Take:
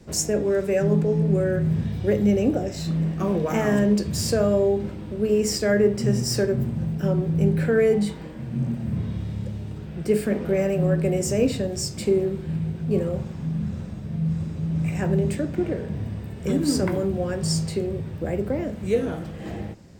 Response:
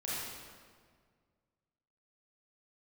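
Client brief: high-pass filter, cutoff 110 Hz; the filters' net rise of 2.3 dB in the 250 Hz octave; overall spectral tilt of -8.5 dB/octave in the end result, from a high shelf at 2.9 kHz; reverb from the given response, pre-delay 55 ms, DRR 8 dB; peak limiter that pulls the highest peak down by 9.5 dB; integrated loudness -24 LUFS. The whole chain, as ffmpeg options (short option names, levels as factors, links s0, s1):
-filter_complex "[0:a]highpass=110,equalizer=f=250:t=o:g=4,highshelf=f=2900:g=-5.5,alimiter=limit=0.15:level=0:latency=1,asplit=2[s0][s1];[1:a]atrim=start_sample=2205,adelay=55[s2];[s1][s2]afir=irnorm=-1:irlink=0,volume=0.251[s3];[s0][s3]amix=inputs=2:normalize=0,volume=1.12"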